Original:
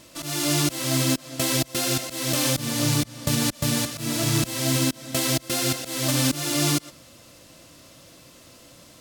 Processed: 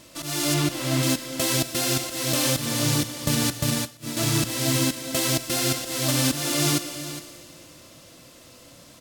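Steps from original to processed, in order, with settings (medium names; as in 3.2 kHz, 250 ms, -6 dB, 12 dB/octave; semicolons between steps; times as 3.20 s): 0.54–1.03 s: tone controls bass +2 dB, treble -7 dB; delay 412 ms -13 dB; Schroeder reverb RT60 2.5 s, combs from 25 ms, DRR 10.5 dB; 3.64–4.17 s: upward expansion 2.5:1, over -33 dBFS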